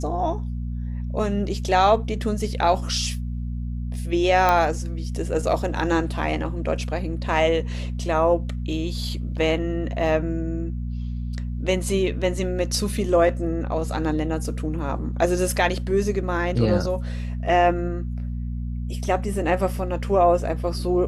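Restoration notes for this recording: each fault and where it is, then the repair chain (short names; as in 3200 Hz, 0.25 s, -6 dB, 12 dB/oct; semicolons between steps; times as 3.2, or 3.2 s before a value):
hum 60 Hz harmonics 4 -28 dBFS
4.49 pop -7 dBFS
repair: de-click; de-hum 60 Hz, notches 4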